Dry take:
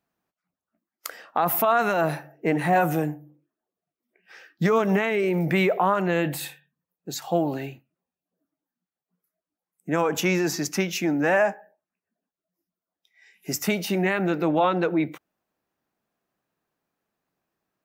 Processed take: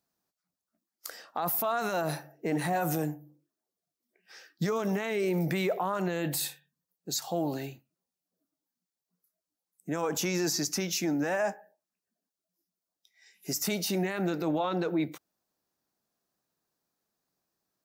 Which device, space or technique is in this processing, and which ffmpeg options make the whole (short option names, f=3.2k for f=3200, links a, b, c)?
over-bright horn tweeter: -af "highshelf=f=3.5k:t=q:w=1.5:g=7.5,alimiter=limit=-16.5dB:level=0:latency=1:release=20,volume=-4.5dB"